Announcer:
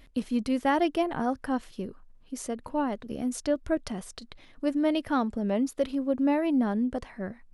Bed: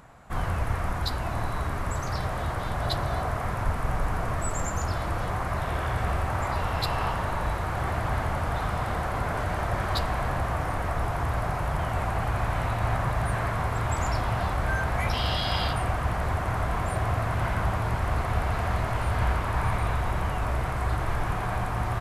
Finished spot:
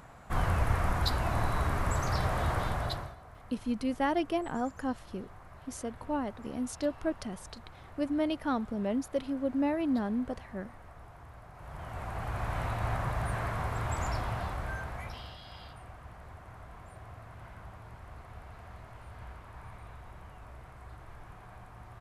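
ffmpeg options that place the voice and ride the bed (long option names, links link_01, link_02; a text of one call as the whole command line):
ffmpeg -i stem1.wav -i stem2.wav -filter_complex "[0:a]adelay=3350,volume=-4.5dB[link_01];[1:a]volume=16.5dB,afade=type=out:start_time=2.59:duration=0.56:silence=0.0749894,afade=type=in:start_time=11.53:duration=1.07:silence=0.141254,afade=type=out:start_time=14.11:duration=1.25:silence=0.16788[link_02];[link_01][link_02]amix=inputs=2:normalize=0" out.wav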